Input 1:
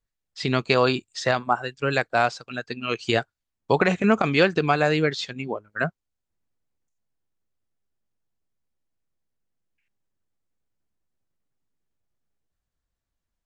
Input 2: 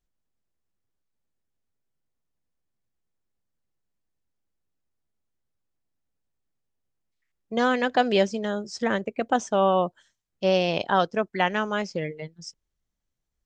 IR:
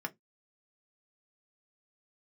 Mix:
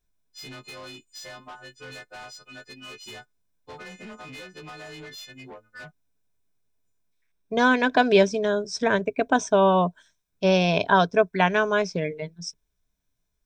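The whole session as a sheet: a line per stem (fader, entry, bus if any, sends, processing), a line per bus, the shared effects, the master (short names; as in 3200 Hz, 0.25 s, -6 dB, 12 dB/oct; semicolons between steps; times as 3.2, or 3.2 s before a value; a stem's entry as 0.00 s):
-10.0 dB, 0.00 s, muted 7.27–8.33, no send, frequency quantiser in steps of 3 st; compressor 10:1, threshold -22 dBFS, peak gain reduction 12 dB; soft clip -27.5 dBFS, distortion -9 dB
+2.5 dB, 0.00 s, no send, ripple EQ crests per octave 1.6, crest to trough 10 dB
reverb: off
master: dry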